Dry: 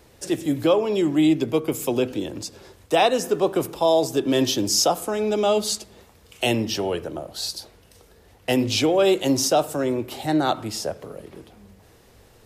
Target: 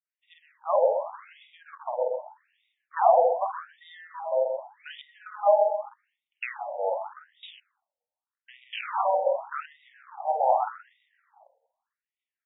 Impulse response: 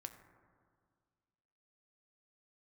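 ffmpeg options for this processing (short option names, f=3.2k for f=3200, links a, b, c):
-filter_complex "[0:a]tiltshelf=f=1.5k:g=3.5,asplit=2[a][b];[b]aecho=0:1:127|254|381|508|635:0.562|0.225|0.09|0.036|0.0144[c];[a][c]amix=inputs=2:normalize=0,asplit=3[d][e][f];[d]afade=t=out:st=7.59:d=0.02[g];[e]aeval=exprs='max(val(0),0)':c=same,afade=t=in:st=7.59:d=0.02,afade=t=out:st=9.25:d=0.02[h];[f]afade=t=in:st=9.25:d=0.02[i];[g][h][i]amix=inputs=3:normalize=0,equalizer=f=310:w=1.7:g=-5.5,asplit=2[j][k];[k]adelay=48,volume=-4.5dB[l];[j][l]amix=inputs=2:normalize=0,agate=range=-33dB:threshold=-37dB:ratio=3:detection=peak,afwtdn=0.0316,afftfilt=real='re*between(b*sr/1024,650*pow(2700/650,0.5+0.5*sin(2*PI*0.84*pts/sr))/1.41,650*pow(2700/650,0.5+0.5*sin(2*PI*0.84*pts/sr))*1.41)':imag='im*between(b*sr/1024,650*pow(2700/650,0.5+0.5*sin(2*PI*0.84*pts/sr))/1.41,650*pow(2700/650,0.5+0.5*sin(2*PI*0.84*pts/sr))*1.41)':win_size=1024:overlap=0.75"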